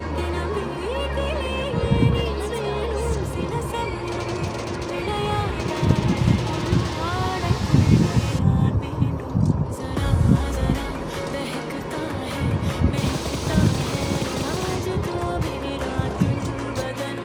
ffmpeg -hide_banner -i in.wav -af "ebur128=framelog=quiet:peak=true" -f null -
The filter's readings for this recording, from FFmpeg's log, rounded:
Integrated loudness:
  I:         -23.4 LUFS
  Threshold: -33.4 LUFS
Loudness range:
  LRA:         4.5 LU
  Threshold: -43.2 LUFS
  LRA low:   -25.3 LUFS
  LRA high:  -20.8 LUFS
True peak:
  Peak:       -2.1 dBFS